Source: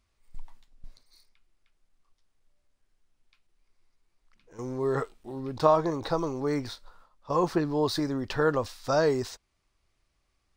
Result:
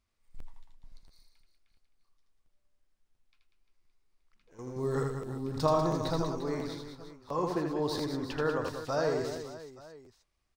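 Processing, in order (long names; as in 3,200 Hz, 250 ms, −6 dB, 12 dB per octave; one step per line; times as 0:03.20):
0:04.76–0:06.22: bass and treble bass +9 dB, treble +10 dB
reverse bouncing-ball delay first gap 80 ms, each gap 1.4×, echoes 5
regular buffer underruns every 0.69 s, samples 512, repeat, from 0:00.38
level −7 dB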